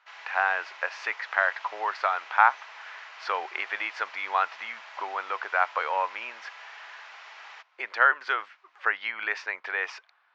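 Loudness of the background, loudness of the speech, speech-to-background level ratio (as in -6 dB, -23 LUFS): -44.5 LUFS, -28.0 LUFS, 16.5 dB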